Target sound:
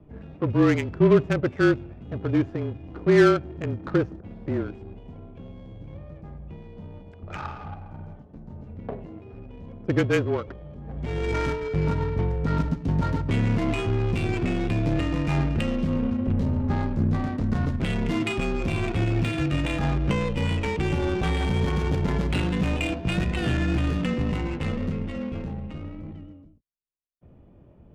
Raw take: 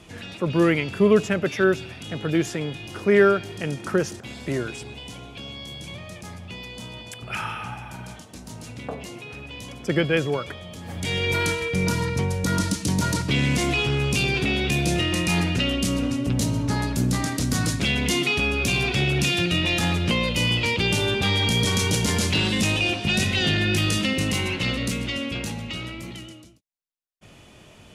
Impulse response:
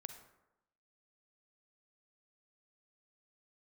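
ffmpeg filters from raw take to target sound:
-af "afreqshift=-29,adynamicsmooth=sensitivity=1:basefreq=530"

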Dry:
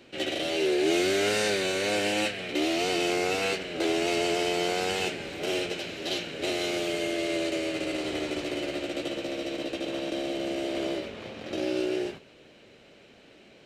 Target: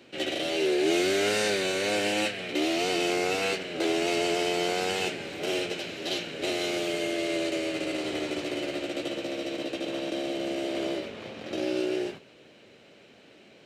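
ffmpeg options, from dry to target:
-af "highpass=92"

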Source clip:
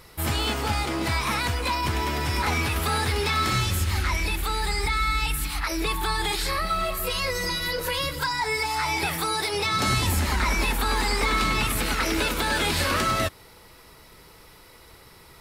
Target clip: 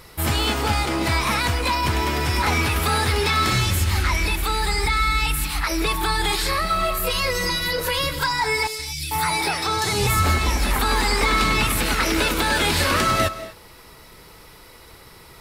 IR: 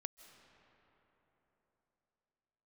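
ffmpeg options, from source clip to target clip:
-filter_complex "[0:a]asettb=1/sr,asplit=3[a][b][c];[a]atrim=end=8.674[d];[b]atrim=start=8.67:end=10.79,asetpts=PTS-STARTPTS,afade=t=in:d=0.004:c=qsin,afade=t=out:st=2.116:d=0.004:c=qsin,acrossover=split=220|3200[e][f][g];[e]adelay=120[h];[f]adelay=440[i];[h][i][g]amix=inputs=3:normalize=0,atrim=end_sample=93492[j];[c]atrim=start=10.786[k];[d][j]acrossfade=d=0.004:c1=hsin:c2=qsin[l];[l][k]acrossfade=d=0.004:c1=qsin:c2=hsin[m];[1:a]atrim=start_sample=2205,afade=t=out:st=0.31:d=0.01,atrim=end_sample=14112[n];[m][n]afir=irnorm=-1:irlink=0,volume=8.5dB"

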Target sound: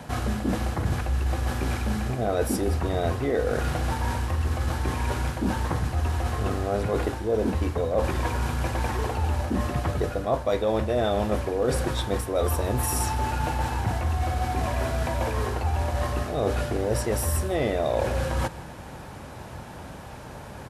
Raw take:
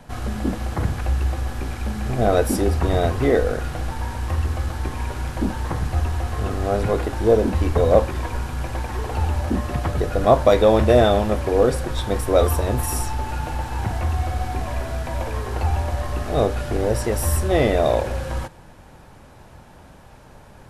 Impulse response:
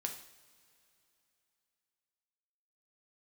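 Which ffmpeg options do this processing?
-af "highpass=55,areverse,acompressor=threshold=-29dB:ratio=6,areverse,aecho=1:1:158:0.0944,volume=6.5dB"

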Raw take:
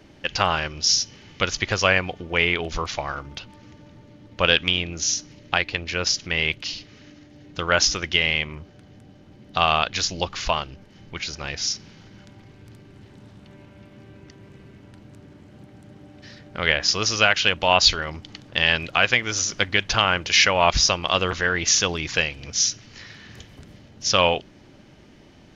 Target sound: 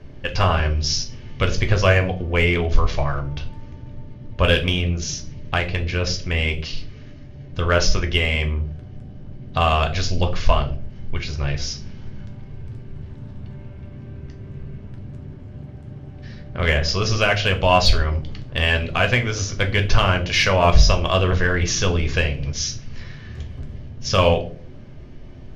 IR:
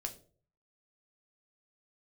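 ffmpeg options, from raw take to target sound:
-filter_complex "[0:a]aemphasis=mode=reproduction:type=bsi,asplit=2[a][b];[b]asoftclip=type=hard:threshold=-15dB,volume=-8.5dB[c];[a][c]amix=inputs=2:normalize=0[d];[1:a]atrim=start_sample=2205[e];[d][e]afir=irnorm=-1:irlink=0"

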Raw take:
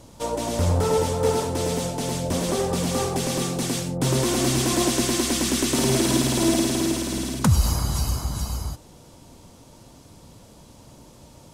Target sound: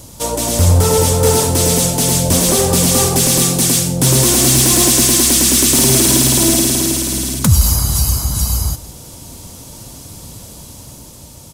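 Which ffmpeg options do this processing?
-filter_complex "[0:a]aemphasis=mode=production:type=75kf,dynaudnorm=f=180:g=11:m=3.5dB,aeval=exprs='0.891*sin(PI/2*2*val(0)/0.891)':c=same,equalizer=f=74:w=0.5:g=6.5,asplit=2[a][b];[b]aecho=0:1:168:0.133[c];[a][c]amix=inputs=2:normalize=0,volume=-5dB"

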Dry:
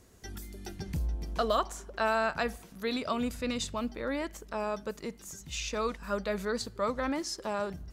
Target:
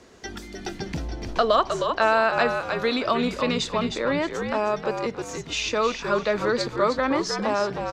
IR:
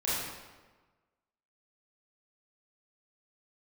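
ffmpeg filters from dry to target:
-filter_complex "[0:a]acrossover=split=220 6100:gain=0.224 1 0.0708[a][b][c];[a][b][c]amix=inputs=3:normalize=0,asplit=5[d][e][f][g][h];[e]adelay=311,afreqshift=-67,volume=-7dB[i];[f]adelay=622,afreqshift=-134,volume=-17.2dB[j];[g]adelay=933,afreqshift=-201,volume=-27.3dB[k];[h]adelay=1244,afreqshift=-268,volume=-37.5dB[l];[d][i][j][k][l]amix=inputs=5:normalize=0,asplit=2[m][n];[n]acompressor=threshold=-38dB:ratio=6,volume=-1.5dB[o];[m][o]amix=inputs=2:normalize=0,volume=7dB"

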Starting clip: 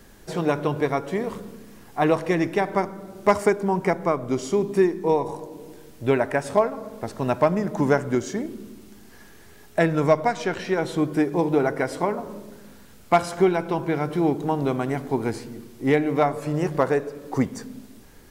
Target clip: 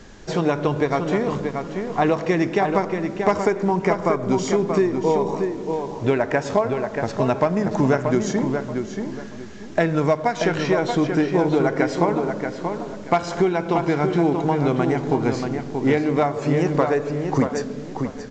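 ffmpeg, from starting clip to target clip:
-filter_complex "[0:a]acompressor=threshold=-23dB:ratio=3,asplit=2[a][b];[b]adelay=632,lowpass=f=3.3k:p=1,volume=-5.5dB,asplit=2[c][d];[d]adelay=632,lowpass=f=3.3k:p=1,volume=0.27,asplit=2[e][f];[f]adelay=632,lowpass=f=3.3k:p=1,volume=0.27,asplit=2[g][h];[h]adelay=632,lowpass=f=3.3k:p=1,volume=0.27[i];[a][c][e][g][i]amix=inputs=5:normalize=0,volume=6dB" -ar 16000 -c:a pcm_alaw

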